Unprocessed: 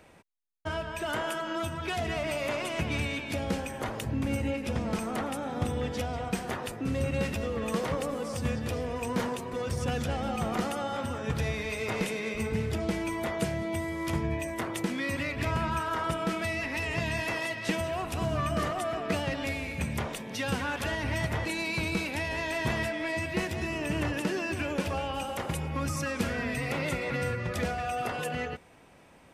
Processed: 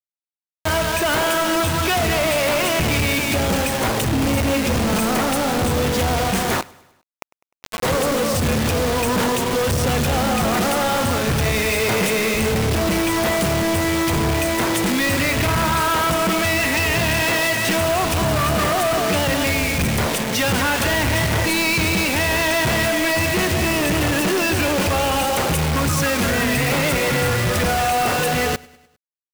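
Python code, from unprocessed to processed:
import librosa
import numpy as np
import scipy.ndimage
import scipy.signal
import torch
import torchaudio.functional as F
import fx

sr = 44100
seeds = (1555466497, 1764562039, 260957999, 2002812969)

y = fx.formant_cascade(x, sr, vowel='a', at=(6.61, 7.83))
y = fx.quant_companded(y, sr, bits=2)
y = fx.echo_feedback(y, sr, ms=101, feedback_pct=55, wet_db=-23.5)
y = F.gain(torch.from_numpy(y), 7.5).numpy()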